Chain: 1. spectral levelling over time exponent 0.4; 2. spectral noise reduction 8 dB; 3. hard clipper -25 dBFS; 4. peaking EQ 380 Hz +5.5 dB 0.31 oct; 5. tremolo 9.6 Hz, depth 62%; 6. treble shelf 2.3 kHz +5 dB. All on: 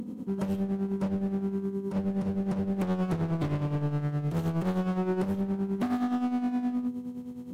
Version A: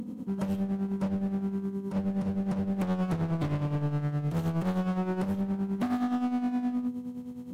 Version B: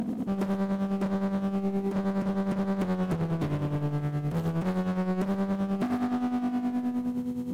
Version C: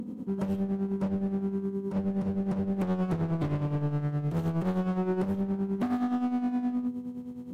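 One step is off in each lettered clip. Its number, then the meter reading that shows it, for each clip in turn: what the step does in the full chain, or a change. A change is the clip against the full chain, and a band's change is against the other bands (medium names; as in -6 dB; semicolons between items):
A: 4, 500 Hz band -3.0 dB; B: 2, 2 kHz band +2.0 dB; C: 6, 2 kHz band -1.5 dB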